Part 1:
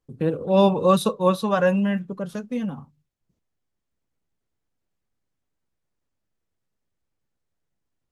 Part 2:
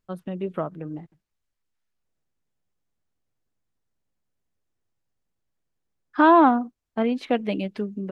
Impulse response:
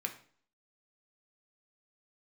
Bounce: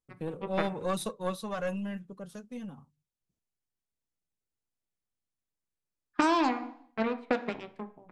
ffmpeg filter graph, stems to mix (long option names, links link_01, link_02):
-filter_complex "[0:a]highshelf=frequency=5900:gain=11.5,aeval=exprs='(tanh(2.82*val(0)+0.6)-tanh(0.6))/2.82':channel_layout=same,volume=-10.5dB,asplit=2[link_01][link_02];[1:a]highshelf=frequency=3000:gain=-9,aeval=exprs='0.398*(cos(1*acos(clip(val(0)/0.398,-1,1)))-cos(1*PI/2))+0.0631*(cos(7*acos(clip(val(0)/0.398,-1,1)))-cos(7*PI/2))':channel_layout=same,volume=1dB,asplit=2[link_03][link_04];[link_04]volume=-6dB[link_05];[link_02]apad=whole_len=357652[link_06];[link_03][link_06]sidechaingate=range=-7dB:threshold=-51dB:ratio=16:detection=peak[link_07];[2:a]atrim=start_sample=2205[link_08];[link_05][link_08]afir=irnorm=-1:irlink=0[link_09];[link_01][link_07][link_09]amix=inputs=3:normalize=0,lowpass=frequency=11000:width=0.5412,lowpass=frequency=11000:width=1.3066,acompressor=threshold=-22dB:ratio=12"